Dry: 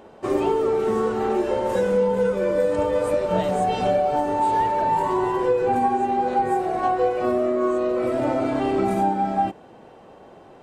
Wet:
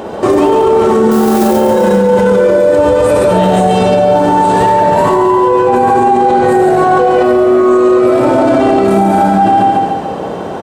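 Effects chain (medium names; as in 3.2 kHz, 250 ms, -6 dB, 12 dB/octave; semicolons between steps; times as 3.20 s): high-pass 60 Hz; reverberation RT60 0.40 s, pre-delay 63 ms, DRR 4.5 dB; 1.11–1.53 s: modulation noise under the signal 15 dB; peaking EQ 2.2 kHz -3.5 dB 0.77 oct; feedback delay 141 ms, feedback 47%, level -3.5 dB; loudness maximiser +23.5 dB; trim -1 dB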